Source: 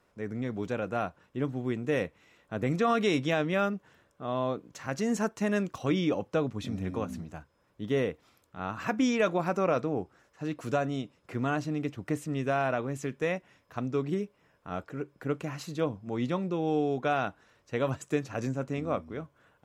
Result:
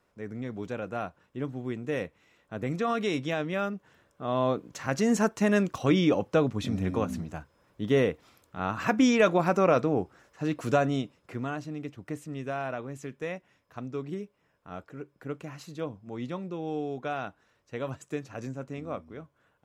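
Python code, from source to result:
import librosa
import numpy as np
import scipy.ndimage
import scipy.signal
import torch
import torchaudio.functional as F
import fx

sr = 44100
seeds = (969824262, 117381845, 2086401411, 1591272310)

y = fx.gain(x, sr, db=fx.line((3.66, -2.5), (4.49, 4.5), (10.96, 4.5), (11.55, -5.0)))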